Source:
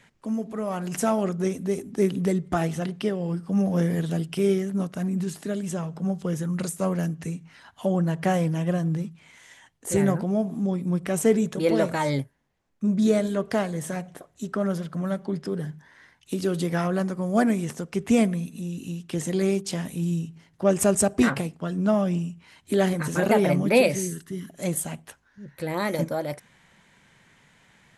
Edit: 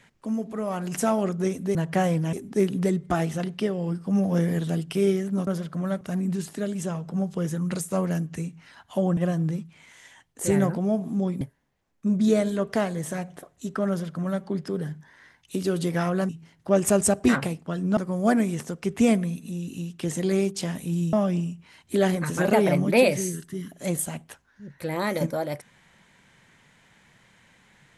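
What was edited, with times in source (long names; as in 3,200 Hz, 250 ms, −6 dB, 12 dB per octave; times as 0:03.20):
0:08.05–0:08.63: move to 0:01.75
0:10.87–0:12.19: remove
0:14.67–0:15.21: duplicate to 0:04.89
0:20.23–0:21.91: move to 0:17.07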